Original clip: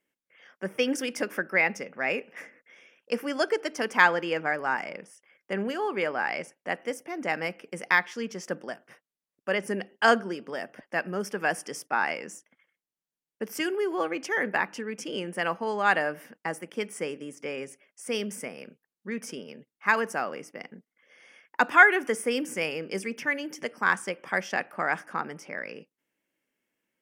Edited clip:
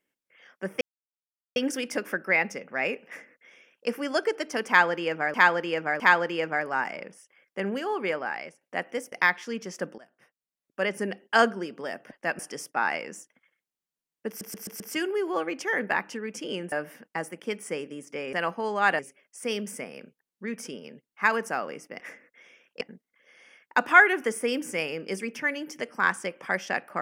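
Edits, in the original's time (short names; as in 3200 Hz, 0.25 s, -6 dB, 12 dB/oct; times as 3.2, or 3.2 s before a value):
0.81 insert silence 0.75 s
2.32–3.13 copy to 20.64
3.93–4.59 loop, 3 plays
6.01–6.54 fade out, to -14.5 dB
7.05–7.81 cut
8.67–9.53 fade in, from -19 dB
11.08–11.55 cut
13.44 stutter 0.13 s, 5 plays
15.36–16.02 move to 17.63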